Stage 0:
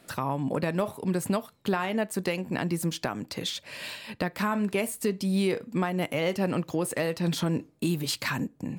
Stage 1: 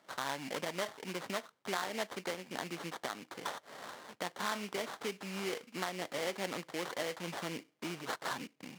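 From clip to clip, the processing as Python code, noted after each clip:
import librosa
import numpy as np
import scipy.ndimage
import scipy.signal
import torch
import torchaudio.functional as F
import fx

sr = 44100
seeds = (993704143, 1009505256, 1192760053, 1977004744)

y = fx.sample_hold(x, sr, seeds[0], rate_hz=2600.0, jitter_pct=20)
y = fx.weighting(y, sr, curve='A')
y = y * 10.0 ** (-6.5 / 20.0)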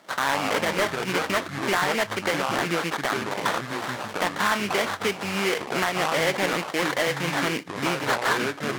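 y = fx.dynamic_eq(x, sr, hz=1800.0, q=0.79, threshold_db=-50.0, ratio=4.0, max_db=5)
y = fx.echo_pitch(y, sr, ms=90, semitones=-5, count=2, db_per_echo=-6.0)
y = fx.fold_sine(y, sr, drive_db=6, ceiling_db=-15.0)
y = y * 10.0 ** (2.5 / 20.0)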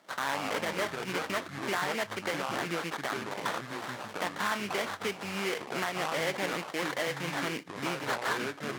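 y = scipy.signal.sosfilt(scipy.signal.butter(2, 74.0, 'highpass', fs=sr, output='sos'), x)
y = y * 10.0 ** (-8.0 / 20.0)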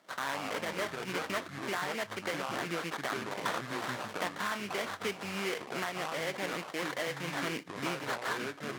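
y = fx.notch(x, sr, hz=850.0, q=26.0)
y = fx.rider(y, sr, range_db=10, speed_s=0.5)
y = y * 10.0 ** (-2.5 / 20.0)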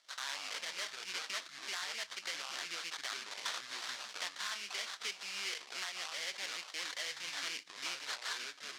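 y = fx.bandpass_q(x, sr, hz=5000.0, q=1.3)
y = y * 10.0 ** (5.0 / 20.0)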